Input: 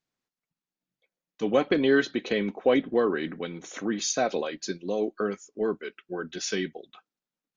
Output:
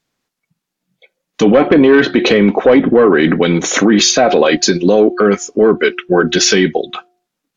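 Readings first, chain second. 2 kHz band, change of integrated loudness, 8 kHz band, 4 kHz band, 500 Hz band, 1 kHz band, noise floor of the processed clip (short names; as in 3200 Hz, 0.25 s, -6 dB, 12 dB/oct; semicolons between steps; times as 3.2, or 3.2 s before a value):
+16.0 dB, +16.5 dB, n/a, +19.0 dB, +16.0 dB, +16.0 dB, -78 dBFS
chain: de-hum 358.1 Hz, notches 2; spectral noise reduction 11 dB; treble ducked by the level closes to 2100 Hz, closed at -21.5 dBFS; in parallel at -7.5 dB: sine folder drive 6 dB, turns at -10 dBFS; on the sum: maximiser +19.5 dB; gain -1 dB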